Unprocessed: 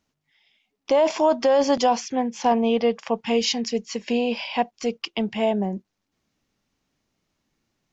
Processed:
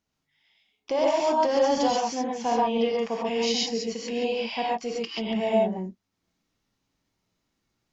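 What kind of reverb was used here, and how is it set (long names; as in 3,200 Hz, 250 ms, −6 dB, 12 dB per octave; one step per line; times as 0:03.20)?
reverb whose tail is shaped and stops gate 160 ms rising, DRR −3.5 dB
level −7.5 dB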